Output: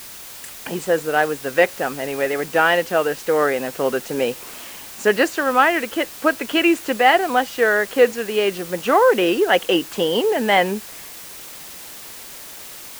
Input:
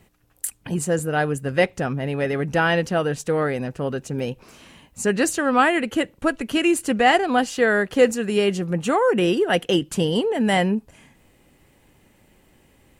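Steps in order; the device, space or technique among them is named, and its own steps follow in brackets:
dictaphone (band-pass filter 390–3,700 Hz; automatic gain control; tape wow and flutter; white noise bed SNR 17 dB)
level −1.5 dB

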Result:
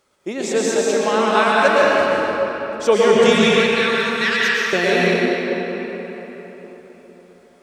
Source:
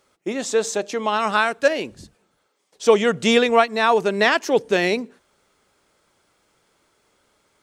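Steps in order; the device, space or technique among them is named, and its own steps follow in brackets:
0:03.30–0:04.73: inverse Chebyshev high-pass filter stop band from 440 Hz, stop band 60 dB
cathedral (convolution reverb RT60 4.3 s, pre-delay 104 ms, DRR −6 dB)
level −1 dB

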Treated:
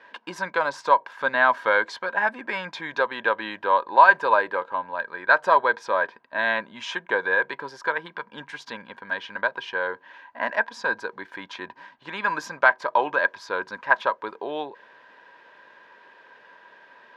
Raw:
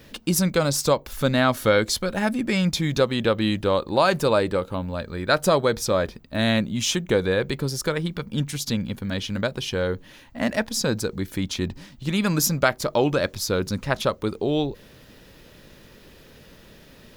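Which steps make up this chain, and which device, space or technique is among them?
tin-can telephone (band-pass filter 650–2,200 Hz; hollow resonant body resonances 980/1,600 Hz, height 17 dB, ringing for 40 ms)

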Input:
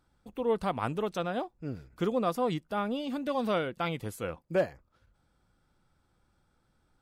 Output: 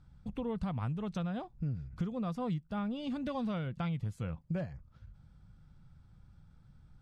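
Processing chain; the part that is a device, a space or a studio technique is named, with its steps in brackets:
jukebox (low-pass filter 6,900 Hz 12 dB per octave; low shelf with overshoot 230 Hz +13.5 dB, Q 1.5; downward compressor 5 to 1, threshold −34 dBFS, peak gain reduction 15.5 dB)

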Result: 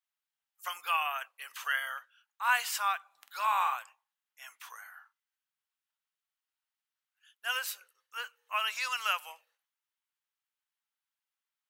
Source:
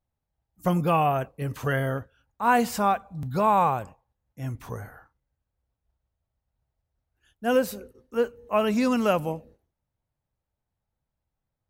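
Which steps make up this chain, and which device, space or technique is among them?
0:03.17–0:03.76: double-tracking delay 47 ms −7 dB
headphones lying on a table (high-pass filter 1,200 Hz 24 dB per octave; parametric band 3,000 Hz +5 dB 0.46 octaves)

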